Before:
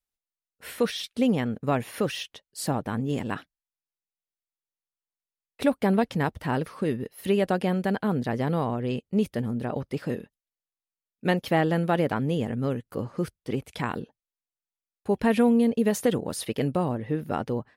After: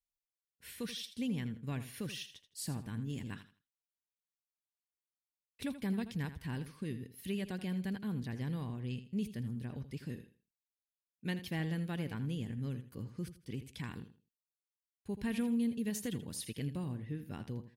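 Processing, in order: passive tone stack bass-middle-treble 6-0-2; notch 1300 Hz, Q 7.3; on a send: feedback echo 81 ms, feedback 24%, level -12.5 dB; on the sum: gain +6.5 dB

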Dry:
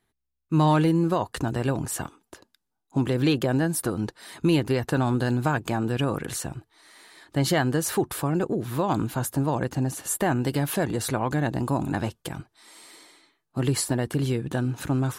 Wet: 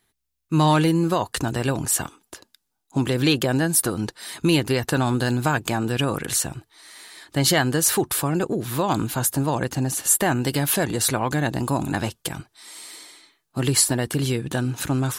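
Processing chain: high shelf 2100 Hz +9 dB; gain +1.5 dB

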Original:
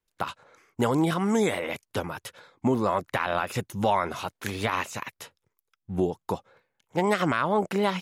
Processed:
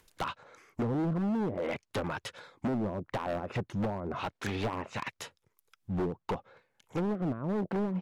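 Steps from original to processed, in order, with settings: treble ducked by the level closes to 320 Hz, closed at -21 dBFS; overloaded stage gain 28.5 dB; upward compressor, threshold -53 dBFS; gain +1 dB

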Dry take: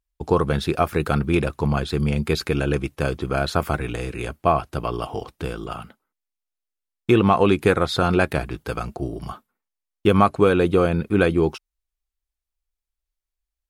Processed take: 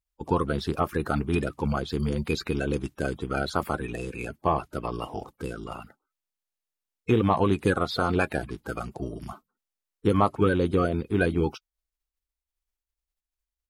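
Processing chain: bin magnitudes rounded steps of 30 dB; gain -5 dB

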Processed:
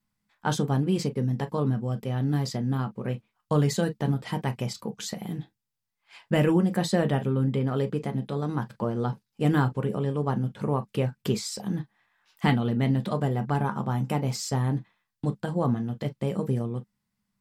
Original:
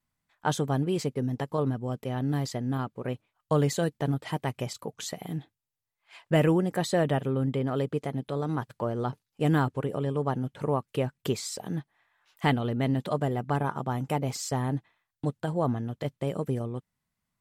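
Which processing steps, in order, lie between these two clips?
thirty-one-band EQ 200 Hz +12 dB, 630 Hz -4 dB, 5000 Hz +4 dB; on a send: reverb, pre-delay 8 ms, DRR 8 dB

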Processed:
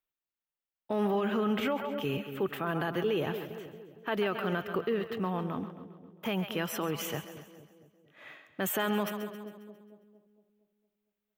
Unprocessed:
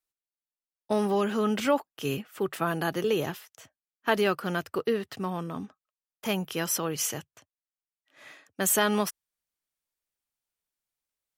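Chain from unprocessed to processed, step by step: band shelf 7200 Hz -13.5 dB; split-band echo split 580 Hz, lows 0.23 s, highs 0.135 s, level -12 dB; limiter -21.5 dBFS, peak gain reduction 10 dB

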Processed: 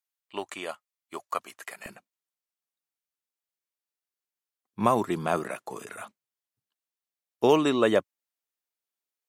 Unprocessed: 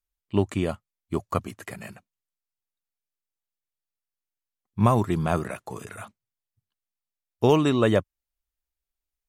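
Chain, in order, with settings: HPF 740 Hz 12 dB/oct, from 1.86 s 270 Hz

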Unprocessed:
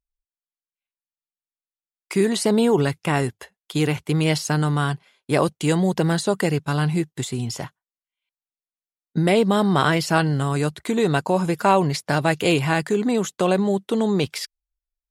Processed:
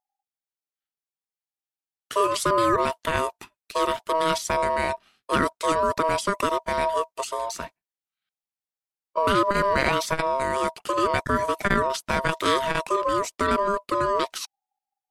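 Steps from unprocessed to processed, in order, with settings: ring modulator 800 Hz; core saturation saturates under 280 Hz

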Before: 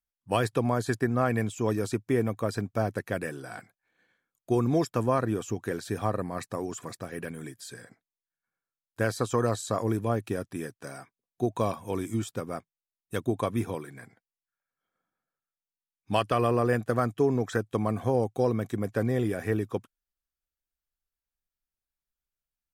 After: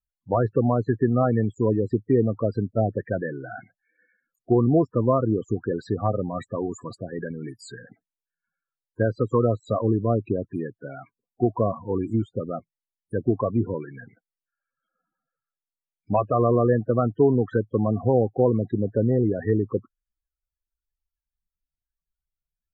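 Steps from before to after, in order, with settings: loudest bins only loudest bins 16; treble ducked by the level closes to 1200 Hz, closed at -25 dBFS; gain +6 dB

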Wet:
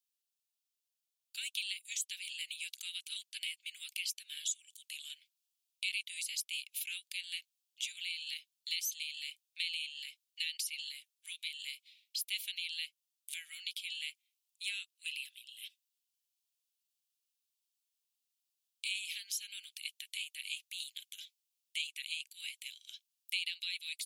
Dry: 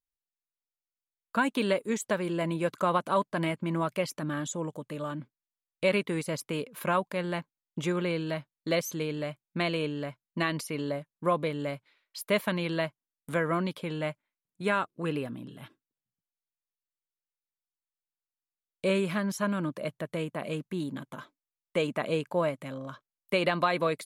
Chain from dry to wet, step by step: in parallel at +0.5 dB: vocal rider within 3 dB; on the sum: steep high-pass 2600 Hz 48 dB/oct; compressor 2:1, threshold -41 dBFS, peak gain reduction 9.5 dB; gain +2 dB

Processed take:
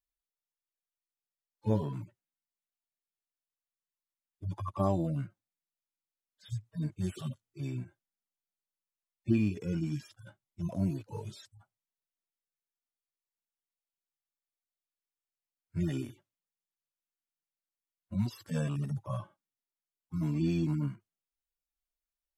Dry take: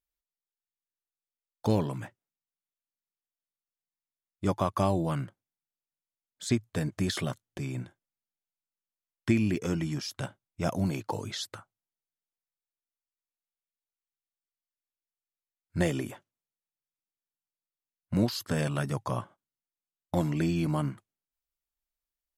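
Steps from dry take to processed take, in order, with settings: median-filter separation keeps harmonic; gain -1.5 dB

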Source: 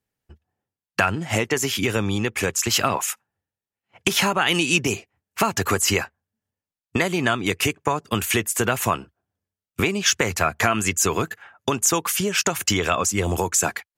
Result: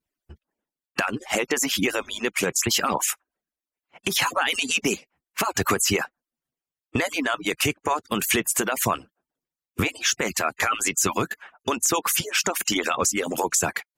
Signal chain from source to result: median-filter separation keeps percussive; limiter -13 dBFS, peak gain reduction 9 dB; gain +2 dB

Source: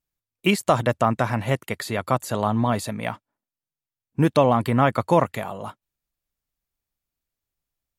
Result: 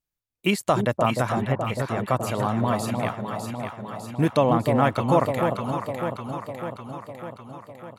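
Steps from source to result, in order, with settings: 1.32–2.07 air absorption 410 m; echo with dull and thin repeats by turns 0.301 s, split 880 Hz, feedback 78%, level -4 dB; gain -2.5 dB

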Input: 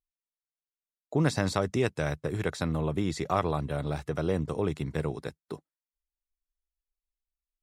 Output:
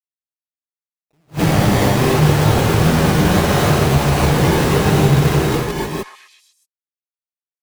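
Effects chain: reverse delay 0.102 s, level -1 dB; Doppler pass-by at 2.63, 6 m/s, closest 3.2 m; bell 150 Hz +7 dB 2.5 oct; reverse; compressor, threshold -33 dBFS, peak gain reduction 15.5 dB; reverse; fuzz box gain 50 dB, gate -55 dBFS; decimation with a swept rate 23×, swing 100% 0.77 Hz; on a send: delay with a stepping band-pass 0.125 s, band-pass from 1200 Hz, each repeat 0.7 oct, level -8 dB; on the sum: non-linear reverb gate 0.33 s rising, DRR -5.5 dB; attack slew limiter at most 360 dB/s; gain -5 dB

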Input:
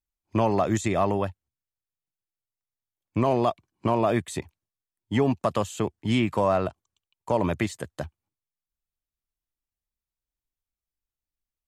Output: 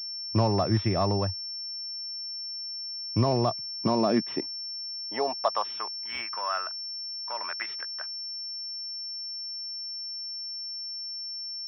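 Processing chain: high-pass sweep 100 Hz -> 1400 Hz, 3.36–6.07; pulse-width modulation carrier 5400 Hz; gain -3.5 dB

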